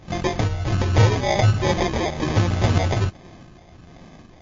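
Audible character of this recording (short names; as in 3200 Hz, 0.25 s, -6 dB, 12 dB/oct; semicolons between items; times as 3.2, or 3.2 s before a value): phasing stages 4, 1.3 Hz, lowest notch 310–3600 Hz; aliases and images of a low sample rate 1400 Hz, jitter 0%; MP3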